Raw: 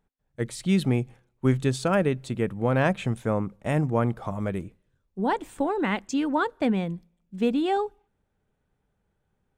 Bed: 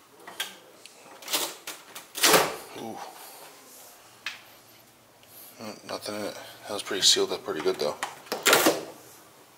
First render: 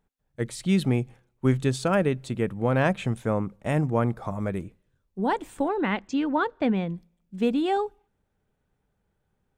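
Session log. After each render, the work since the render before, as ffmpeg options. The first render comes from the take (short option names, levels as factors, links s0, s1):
-filter_complex "[0:a]asettb=1/sr,asplit=3[s0][s1][s2];[s0]atrim=end=4.044[s3];[s1]atrim=start=4.04:end=4.57,asetpts=PTS-STARTPTS,afade=t=in:d=0.004:c=qsin,afade=t=out:st=0.526:d=0.004:c=qsin,equalizer=f=3000:t=o:w=0.22:g=-9.5[s4];[s2]atrim=start=4.566[s5];[s3][s4]acrossfade=d=0.004:c1=hsin:c2=qsin[s6];[s6][s5]acrossfade=d=0.004:c1=qsin:c2=hsin,asettb=1/sr,asplit=3[s7][s8][s9];[s7]atrim=end=5.684[s10];[s8]atrim=start=5.68:end=6.95,asetpts=PTS-STARTPTS,afade=t=in:d=0.004:c=qsin,afade=t=out:st=1.266:d=0.004:c=qsin,lowpass=4400[s11];[s9]atrim=start=6.946[s12];[s10][s11]acrossfade=d=0.004:c1=hsin:c2=qsin[s13];[s13][s12]acrossfade=d=0.004:c1=qsin:c2=hsin"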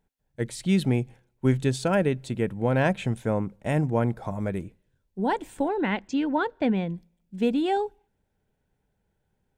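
-af "bandreject=f=1200:w=5.1"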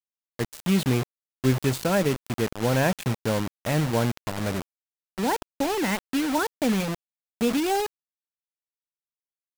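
-af "acrusher=bits=4:mix=0:aa=0.000001"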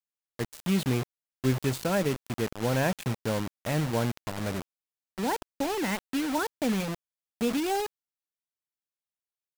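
-af "volume=0.631"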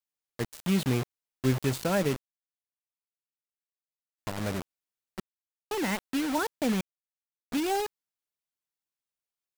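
-filter_complex "[0:a]asplit=7[s0][s1][s2][s3][s4][s5][s6];[s0]atrim=end=2.19,asetpts=PTS-STARTPTS,afade=t=out:st=2.186:d=0.004:c=hsin[s7];[s1]atrim=start=2.19:end=4.18,asetpts=PTS-STARTPTS,volume=0[s8];[s2]atrim=start=4.18:end=5.2,asetpts=PTS-STARTPTS,afade=t=in:d=0.004:c=hsin,afade=t=out:st=1.016:d=0.004:c=hsin[s9];[s3]atrim=start=5.2:end=5.71,asetpts=PTS-STARTPTS,volume=0[s10];[s4]atrim=start=5.71:end=6.81,asetpts=PTS-STARTPTS,afade=t=in:d=0.004:c=hsin,afade=t=out:st=1.096:d=0.004:c=hsin[s11];[s5]atrim=start=6.81:end=7.52,asetpts=PTS-STARTPTS,volume=0[s12];[s6]atrim=start=7.52,asetpts=PTS-STARTPTS,afade=t=in:d=0.004:c=hsin[s13];[s7][s8][s9][s10][s11][s12][s13]concat=n=7:v=0:a=1"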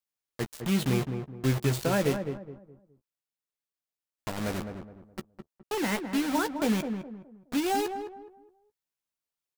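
-filter_complex "[0:a]asplit=2[s0][s1];[s1]adelay=14,volume=0.316[s2];[s0][s2]amix=inputs=2:normalize=0,asplit=2[s3][s4];[s4]adelay=209,lowpass=f=1100:p=1,volume=0.473,asplit=2[s5][s6];[s6]adelay=209,lowpass=f=1100:p=1,volume=0.34,asplit=2[s7][s8];[s8]adelay=209,lowpass=f=1100:p=1,volume=0.34,asplit=2[s9][s10];[s10]adelay=209,lowpass=f=1100:p=1,volume=0.34[s11];[s5][s7][s9][s11]amix=inputs=4:normalize=0[s12];[s3][s12]amix=inputs=2:normalize=0"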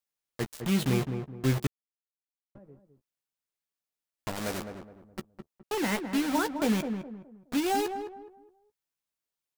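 -filter_complex "[0:a]asettb=1/sr,asplit=3[s0][s1][s2];[s0]atrim=end=4.354[s3];[s1]atrim=start=4.35:end=5.04,asetpts=PTS-STARTPTS,afade=t=in:d=0.004:c=qsin,afade=t=out:st=0.686:d=0.004:c=qsin,bass=f=250:g=-6,treble=f=4000:g=4[s4];[s2]atrim=start=5.036[s5];[s3][s4]acrossfade=d=0.004:c1=hsin:c2=qsin[s6];[s6][s5]acrossfade=d=0.004:c1=qsin:c2=hsin,asplit=3[s7][s8][s9];[s7]atrim=end=1.67,asetpts=PTS-STARTPTS,afade=t=out:st=1.666:d=0.004:c=hsin[s10];[s8]atrim=start=1.67:end=2.55,asetpts=PTS-STARTPTS,volume=0[s11];[s9]atrim=start=2.55,asetpts=PTS-STARTPTS,afade=t=in:d=0.004:c=hsin[s12];[s10][s11][s12]concat=n=3:v=0:a=1"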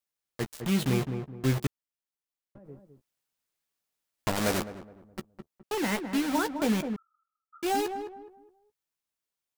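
-filter_complex "[0:a]asplit=3[s0][s1][s2];[s0]afade=t=out:st=2.64:d=0.02[s3];[s1]acontrast=58,afade=t=in:st=2.64:d=0.02,afade=t=out:st=4.62:d=0.02[s4];[s2]afade=t=in:st=4.62:d=0.02[s5];[s3][s4][s5]amix=inputs=3:normalize=0,asettb=1/sr,asplit=3[s6][s7][s8];[s6]atrim=end=6.964[s9];[s7]atrim=start=6.96:end=7.63,asetpts=PTS-STARTPTS,afade=t=in:d=0.004:c=qsin,afade=t=out:st=0.666:d=0.004:c=qsin,asuperpass=centerf=1300:order=12:qfactor=7.8[s10];[s8]atrim=start=7.626[s11];[s9][s10]acrossfade=d=0.004:c1=hsin:c2=qsin[s12];[s12][s11]acrossfade=d=0.004:c1=qsin:c2=hsin"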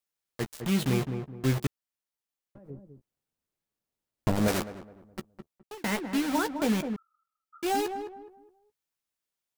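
-filter_complex "[0:a]asettb=1/sr,asplit=3[s0][s1][s2];[s0]atrim=end=2.704[s3];[s1]atrim=start=2.7:end=4.48,asetpts=PTS-STARTPTS,afade=t=in:d=0.004:c=qsin,afade=t=out:st=1.776:d=0.004:c=qsin,tiltshelf=f=650:g=7[s4];[s2]atrim=start=4.476[s5];[s3][s4]acrossfade=d=0.004:c1=hsin:c2=qsin[s6];[s6][s5]acrossfade=d=0.004:c1=qsin:c2=hsin,asplit=2[s7][s8];[s7]atrim=end=5.84,asetpts=PTS-STARTPTS,afade=t=out:st=5.26:d=0.58:c=qsin[s9];[s8]atrim=start=5.84,asetpts=PTS-STARTPTS,afade=t=in:d=0.004:c=hsin[s10];[s9][s10]concat=n=2:v=0:a=1"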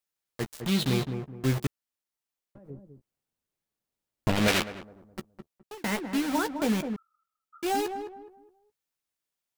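-filter_complex "[0:a]asettb=1/sr,asplit=3[s0][s1][s2];[s0]atrim=end=0.674[s3];[s1]atrim=start=0.67:end=1.13,asetpts=PTS-STARTPTS,afade=t=in:d=0.004:c=qsin,afade=t=out:st=0.456:d=0.004:c=qsin,equalizer=f=3900:t=o:w=0.54:g=9[s4];[s2]atrim=start=1.126[s5];[s3][s4]acrossfade=d=0.004:c1=hsin:c2=qsin[s6];[s6][s5]acrossfade=d=0.004:c1=qsin:c2=hsin,asettb=1/sr,asplit=3[s7][s8][s9];[s7]atrim=end=4.294[s10];[s8]atrim=start=4.29:end=4.83,asetpts=PTS-STARTPTS,afade=t=in:d=0.004:c=qsin,afade=t=out:st=0.536:d=0.004:c=qsin,equalizer=f=2800:t=o:w=1.8:g=12[s11];[s9]atrim=start=4.826[s12];[s10][s11]acrossfade=d=0.004:c1=hsin:c2=qsin[s13];[s13][s12]acrossfade=d=0.004:c1=qsin:c2=hsin"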